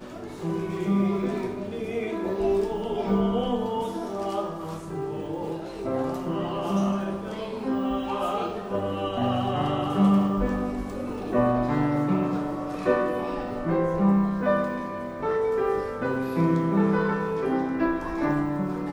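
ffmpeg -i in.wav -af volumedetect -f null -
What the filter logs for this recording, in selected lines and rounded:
mean_volume: -25.9 dB
max_volume: -9.4 dB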